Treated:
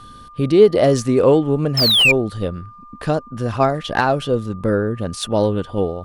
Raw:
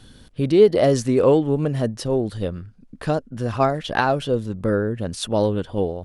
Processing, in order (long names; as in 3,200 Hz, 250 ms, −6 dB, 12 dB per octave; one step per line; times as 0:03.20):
sound drawn into the spectrogram fall, 0:01.77–0:02.12, 2,300–5,400 Hz −13 dBFS
steady tone 1,200 Hz −42 dBFS
slew-rate limiting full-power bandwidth 590 Hz
level +2.5 dB